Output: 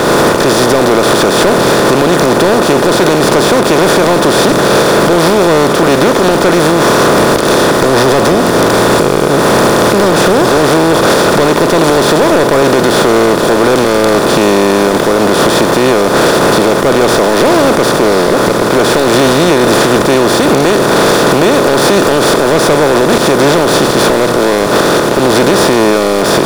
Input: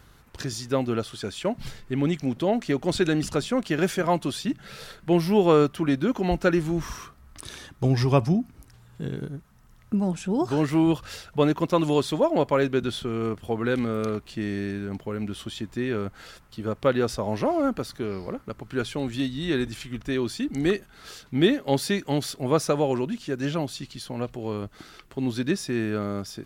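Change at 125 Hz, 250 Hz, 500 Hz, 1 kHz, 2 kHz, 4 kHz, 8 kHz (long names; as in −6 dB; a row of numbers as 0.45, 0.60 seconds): +12.0, +15.0, +19.5, +22.0, +22.5, +21.5, +24.0 decibels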